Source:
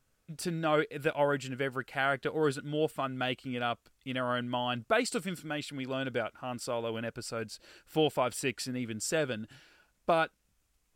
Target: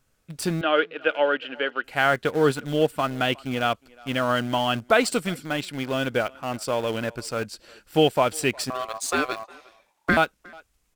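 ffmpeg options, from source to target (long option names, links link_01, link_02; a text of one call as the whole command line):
ffmpeg -i in.wav -filter_complex "[0:a]asplit=2[link_01][link_02];[link_02]aeval=exprs='val(0)*gte(abs(val(0)),0.0188)':channel_layout=same,volume=-5dB[link_03];[link_01][link_03]amix=inputs=2:normalize=0,asettb=1/sr,asplit=3[link_04][link_05][link_06];[link_04]atrim=end=0.614[link_07];[link_05]atrim=start=0.61:end=1.84,asetpts=PTS-STARTPTS,afade=type=in:duration=0.004:curve=qsin,afade=type=out:start_time=1.226:duration=0.004:curve=qsin,highpass=frequency=310:width=0.5412,highpass=frequency=310:width=1.3066,equalizer=frequency=380:width_type=q:width=4:gain=-6,equalizer=frequency=710:width_type=q:width=4:gain=-4,equalizer=frequency=1000:width_type=q:width=4:gain=-7,equalizer=frequency=1500:width_type=q:width=4:gain=3,equalizer=frequency=2100:width_type=q:width=4:gain=-5,equalizer=frequency=3000:width_type=q:width=4:gain=8,lowpass=frequency=3100:width=0.5412,lowpass=frequency=3100:width=1.3066[link_08];[link_06]atrim=start=1.836[link_09];[link_07][link_08]acrossfade=duration=0.004:curve1=hsin:curve2=qsin[link_10];[link_10][link_09]acrossfade=duration=0.004:curve1=qsin:curve2=hsin,asettb=1/sr,asplit=3[link_11][link_12][link_13];[link_11]atrim=end=8.704[link_14];[link_12]atrim=start=8.7:end=10.17,asetpts=PTS-STARTPTS,afade=type=in:duration=0.004:curve=qsin,afade=type=out:start_time=1.466:duration=0.004:curve=qsin,aeval=exprs='val(0)*sin(2*PI*890*n/s)':channel_layout=same[link_15];[link_13]atrim=start=10.166[link_16];[link_14][link_15]acrossfade=duration=0.004:curve1=hsin:curve2=qsin[link_17];[link_17][link_16]acrossfade=duration=0.004:curve1=qsin:curve2=hsin,asplit=2[link_18][link_19];[link_19]adelay=360,highpass=300,lowpass=3400,asoftclip=type=hard:threshold=-20.5dB,volume=-23dB[link_20];[link_18][link_20]amix=inputs=2:normalize=0,volume=5dB" out.wav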